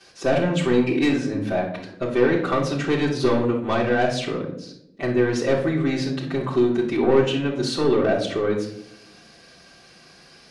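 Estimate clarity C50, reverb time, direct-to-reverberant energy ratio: 6.0 dB, 0.75 s, -10.5 dB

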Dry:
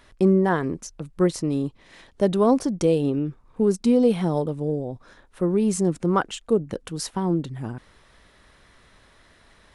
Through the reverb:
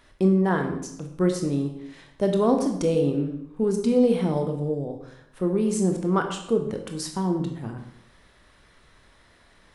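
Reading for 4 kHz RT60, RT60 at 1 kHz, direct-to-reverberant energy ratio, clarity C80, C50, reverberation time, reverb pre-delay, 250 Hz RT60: 0.60 s, 0.70 s, 4.0 dB, 10.0 dB, 7.0 dB, 0.75 s, 19 ms, 0.75 s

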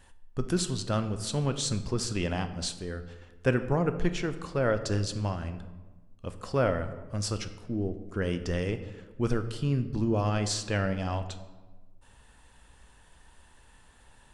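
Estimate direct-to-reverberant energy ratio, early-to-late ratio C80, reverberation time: 9.0 dB, 13.5 dB, 1.3 s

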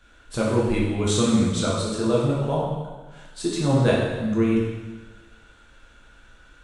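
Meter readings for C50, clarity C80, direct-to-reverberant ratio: 0.5 dB, 3.0 dB, -5.5 dB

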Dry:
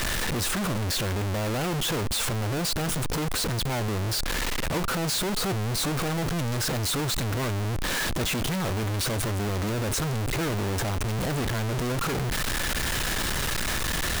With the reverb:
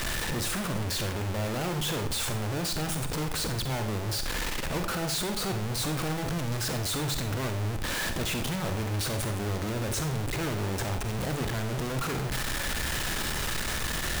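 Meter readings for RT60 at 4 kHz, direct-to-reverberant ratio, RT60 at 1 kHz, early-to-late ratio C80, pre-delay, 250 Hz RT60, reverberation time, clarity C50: 0.45 s, 6.5 dB, 0.50 s, 12.0 dB, 38 ms, 0.55 s, 0.50 s, 8.0 dB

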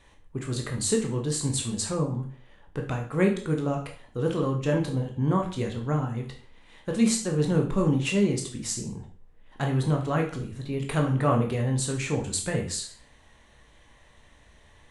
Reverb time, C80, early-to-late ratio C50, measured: 0.45 s, 13.0 dB, 8.5 dB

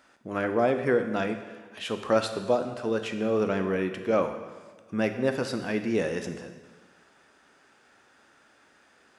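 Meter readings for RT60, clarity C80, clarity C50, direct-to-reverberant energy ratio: 1.4 s, 10.5 dB, 8.5 dB, 6.5 dB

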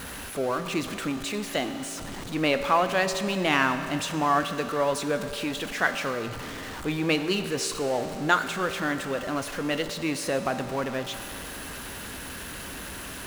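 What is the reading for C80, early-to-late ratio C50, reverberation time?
9.5 dB, 8.5 dB, 2.8 s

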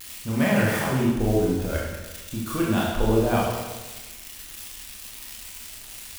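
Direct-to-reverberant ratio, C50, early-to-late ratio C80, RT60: -5.0 dB, 0.0 dB, 3.0 dB, 1.2 s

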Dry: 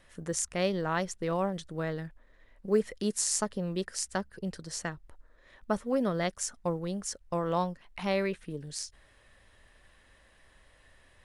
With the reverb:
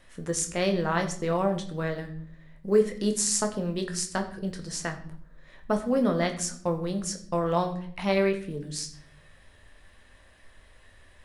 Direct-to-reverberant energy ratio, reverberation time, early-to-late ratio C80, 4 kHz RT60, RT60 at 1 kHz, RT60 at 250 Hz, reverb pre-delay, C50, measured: 4.0 dB, 0.60 s, 14.0 dB, 0.50 s, 0.50 s, 0.95 s, 4 ms, 11.5 dB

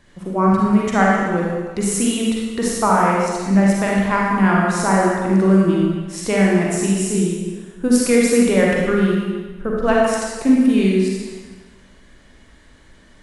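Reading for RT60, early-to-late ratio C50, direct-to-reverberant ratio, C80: 1.4 s, -2.0 dB, -4.0 dB, 0.5 dB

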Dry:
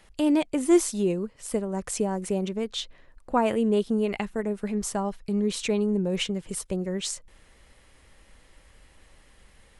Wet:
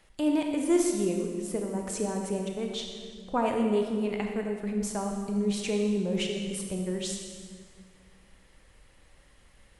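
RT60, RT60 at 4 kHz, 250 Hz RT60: 1.8 s, 1.5 s, 2.3 s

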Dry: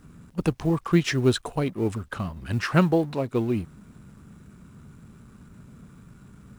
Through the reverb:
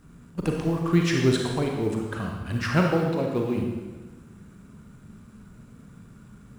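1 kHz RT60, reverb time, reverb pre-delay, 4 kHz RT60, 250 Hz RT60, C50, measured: 1.2 s, 1.3 s, 34 ms, 1.1 s, 1.4 s, 2.0 dB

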